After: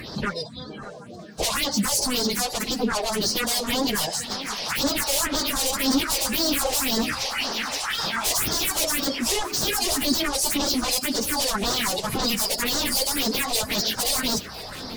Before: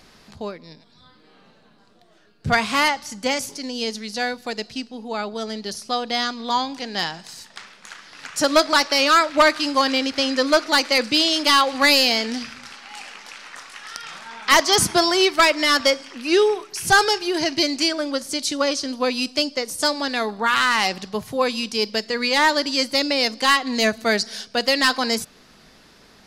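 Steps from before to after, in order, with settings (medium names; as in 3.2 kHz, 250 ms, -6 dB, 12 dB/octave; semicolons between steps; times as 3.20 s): coarse spectral quantiser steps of 30 dB; high-pass 48 Hz 24 dB/octave; compression 2:1, threshold -30 dBFS, peak gain reduction 10.5 dB; sine folder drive 20 dB, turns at -11.5 dBFS; plain phase-vocoder stretch 0.57×; phase shifter stages 4, 1.9 Hz, lowest notch 220–2400 Hz; echo whose repeats swap between lows and highs 596 ms, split 1.8 kHz, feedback 51%, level -13.5 dB; trim -3 dB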